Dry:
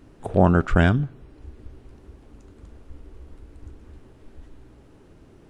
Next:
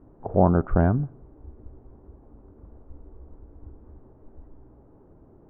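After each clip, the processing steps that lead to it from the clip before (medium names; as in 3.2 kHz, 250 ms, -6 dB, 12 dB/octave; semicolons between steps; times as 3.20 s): four-pole ladder low-pass 1.2 kHz, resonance 25%; trim +3.5 dB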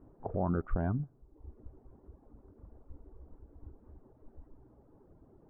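reverb removal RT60 0.75 s; peak limiter -17.5 dBFS, peak gain reduction 10.5 dB; trim -5 dB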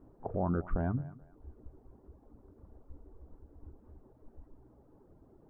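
hum notches 50/100/150 Hz; thinning echo 216 ms, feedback 31%, high-pass 220 Hz, level -17.5 dB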